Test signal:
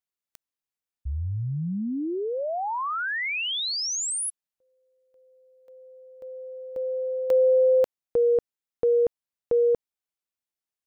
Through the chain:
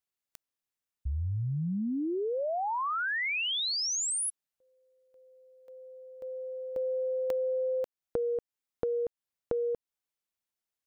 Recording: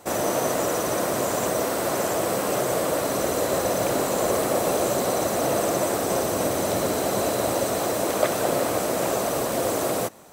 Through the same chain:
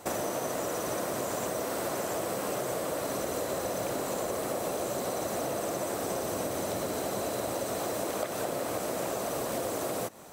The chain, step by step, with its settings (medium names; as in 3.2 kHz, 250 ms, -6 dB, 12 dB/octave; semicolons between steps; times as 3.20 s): compression 10:1, threshold -29 dBFS